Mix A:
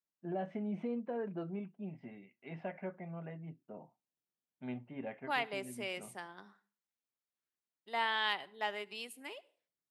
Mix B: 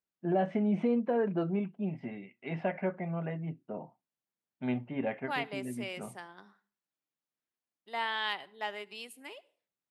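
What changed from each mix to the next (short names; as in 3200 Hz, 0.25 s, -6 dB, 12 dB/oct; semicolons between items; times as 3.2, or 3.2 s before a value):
first voice +9.5 dB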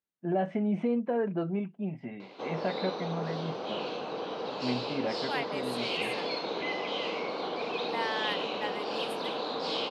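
background: unmuted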